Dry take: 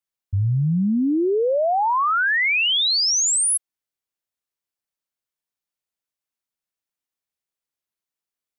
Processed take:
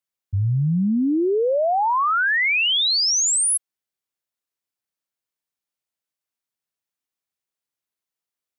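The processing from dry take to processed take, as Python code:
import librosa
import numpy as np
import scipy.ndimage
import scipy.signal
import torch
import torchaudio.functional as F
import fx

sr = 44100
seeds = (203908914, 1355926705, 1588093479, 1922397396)

y = scipy.signal.sosfilt(scipy.signal.butter(2, 60.0, 'highpass', fs=sr, output='sos'), x)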